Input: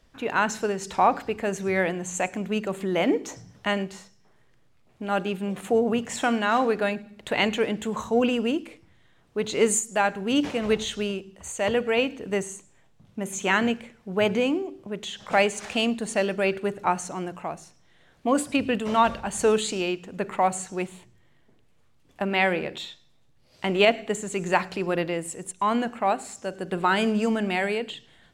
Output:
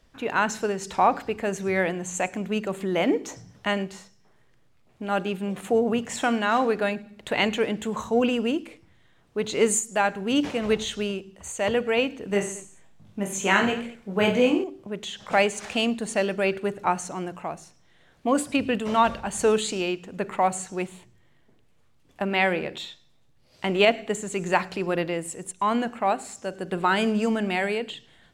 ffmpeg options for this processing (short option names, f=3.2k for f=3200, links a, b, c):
-filter_complex "[0:a]asettb=1/sr,asplit=3[a][b][c];[a]atrim=end=12.274[d];[b]atrim=start=12.27:end=14.64,asetpts=PTS-STARTPTS,afade=t=in:d=0.004:c=qsin,afade=t=out:st=2.366:d=0.004:c=qsin,aecho=1:1:20|48|87.2|142.1|218.9:0.631|0.398|0.251|0.158|0.1,atrim=end_sample=104517[e];[c]atrim=start=14.636[f];[d][e]acrossfade=d=0.004:c1=hsin:c2=qsin[g];[g][f]acrossfade=d=0.004:c1=qsin:c2=hsin"